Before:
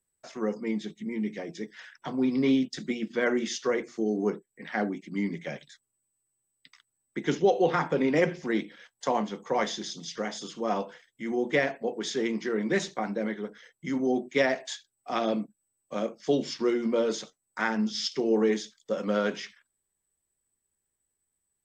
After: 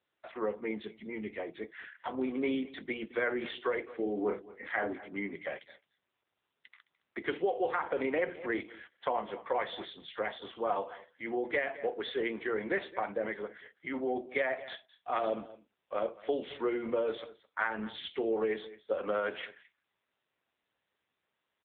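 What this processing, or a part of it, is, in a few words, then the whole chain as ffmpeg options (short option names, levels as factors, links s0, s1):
voicemail: -filter_complex "[0:a]asubboost=boost=2.5:cutoff=98,asettb=1/sr,asplit=3[s0][s1][s2];[s0]atrim=end=3.984[s3];[s1]atrim=start=3.98:end=4.93,asetpts=PTS-STARTPTS,afade=t=in:d=0.004:c=qsin,afade=t=out:st=0.946:d=0.004:c=qsin,asplit=2[s4][s5];[s5]adelay=34,volume=0.75[s6];[s4][s6]amix=inputs=2:normalize=0,atrim=end_sample=41895[s7];[s2]atrim=start=4.926[s8];[s3][s7]acrossfade=d=0.004:c1=hsin:c2=qsin[s9];[s9][s8]acrossfade=d=0.004:c1=qsin:c2=hsin,highpass=440,lowpass=3300,aecho=1:1:214:0.0841,acompressor=threshold=0.0355:ratio=6,volume=1.33" -ar 8000 -c:a libopencore_amrnb -b:a 7950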